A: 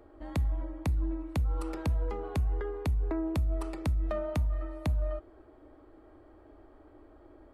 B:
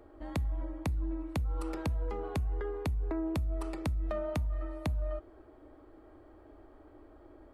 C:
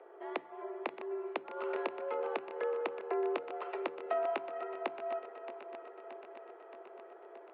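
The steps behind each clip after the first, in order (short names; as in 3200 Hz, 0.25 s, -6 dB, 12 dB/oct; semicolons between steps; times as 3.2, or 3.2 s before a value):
compressor, threshold -29 dBFS, peak gain reduction 4.5 dB
regenerating reverse delay 0.312 s, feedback 81%, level -12 dB; mistuned SSB +64 Hz 310–3100 Hz; gain +3 dB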